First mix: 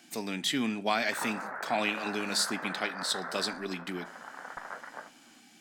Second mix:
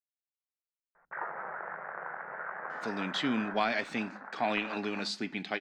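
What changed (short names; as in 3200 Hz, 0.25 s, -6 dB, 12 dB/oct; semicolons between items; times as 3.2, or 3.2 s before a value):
speech: entry +2.70 s; master: add air absorption 170 m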